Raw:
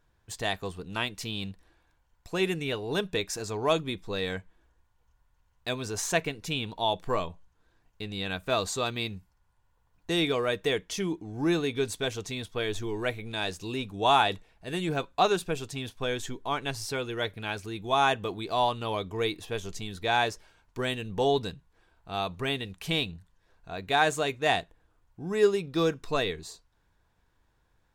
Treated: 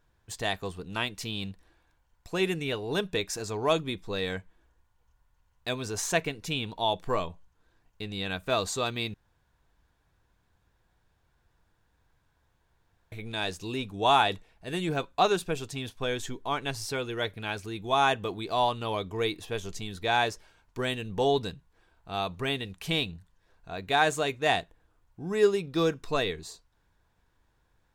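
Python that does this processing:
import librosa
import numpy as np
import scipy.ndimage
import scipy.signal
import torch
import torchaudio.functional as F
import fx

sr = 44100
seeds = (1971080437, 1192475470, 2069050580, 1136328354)

y = fx.edit(x, sr, fx.room_tone_fill(start_s=9.14, length_s=3.98), tone=tone)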